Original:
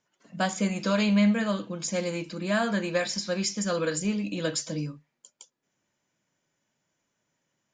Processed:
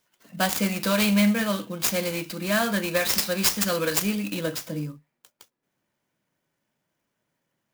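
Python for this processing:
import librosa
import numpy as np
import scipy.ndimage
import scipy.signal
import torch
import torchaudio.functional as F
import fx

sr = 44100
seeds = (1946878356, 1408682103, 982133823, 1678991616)

y = fx.high_shelf(x, sr, hz=2400.0, db=fx.steps((0.0, 10.0), (4.39, -3.0)))
y = fx.clock_jitter(y, sr, seeds[0], jitter_ms=0.034)
y = y * 10.0 ** (1.0 / 20.0)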